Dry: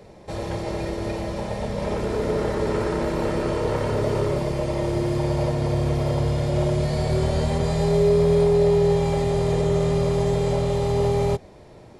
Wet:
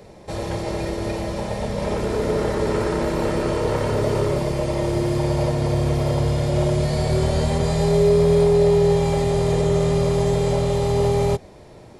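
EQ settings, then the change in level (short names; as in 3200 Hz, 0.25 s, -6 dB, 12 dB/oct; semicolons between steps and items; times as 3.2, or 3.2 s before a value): high shelf 6000 Hz +4.5 dB; +2.0 dB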